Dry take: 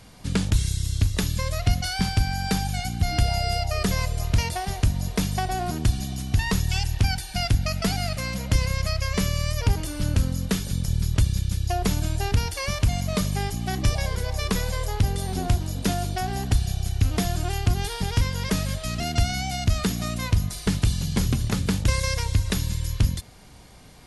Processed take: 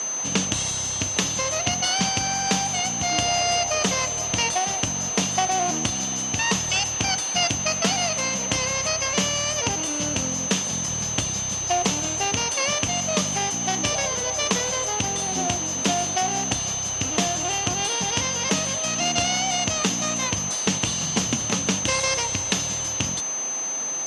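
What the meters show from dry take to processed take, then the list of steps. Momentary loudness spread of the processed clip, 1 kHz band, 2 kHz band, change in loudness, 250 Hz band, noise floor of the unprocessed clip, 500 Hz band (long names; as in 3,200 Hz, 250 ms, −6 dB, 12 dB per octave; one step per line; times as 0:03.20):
3 LU, +5.5 dB, +5.0 dB, +3.0 dB, −0.5 dB, −38 dBFS, +4.5 dB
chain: steady tone 6,200 Hz −29 dBFS
in parallel at −9.5 dB: sample-rate reduction 3,000 Hz, jitter 20%
on the sum: loudspeaker in its box 280–8,400 Hz, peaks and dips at 390 Hz −6 dB, 1,500 Hz −4 dB, 2,900 Hz +7 dB
highs frequency-modulated by the lows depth 0.1 ms
level +4 dB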